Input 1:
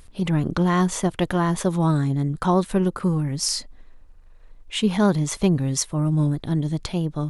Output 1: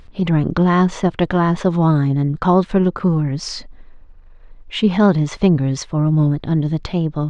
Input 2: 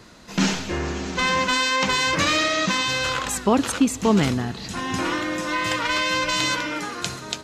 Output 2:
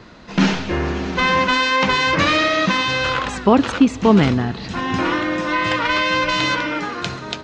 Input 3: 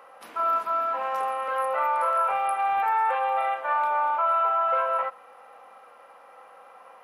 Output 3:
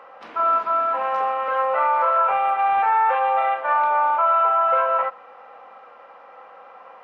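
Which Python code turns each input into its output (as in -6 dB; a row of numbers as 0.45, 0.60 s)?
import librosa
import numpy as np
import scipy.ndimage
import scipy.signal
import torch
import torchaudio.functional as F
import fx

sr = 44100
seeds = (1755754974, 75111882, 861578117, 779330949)

y = scipy.ndimage.gaussian_filter1d(x, 1.8, mode='constant')
y = y * 10.0 ** (5.5 / 20.0)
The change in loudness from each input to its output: +5.5, +4.0, +5.0 LU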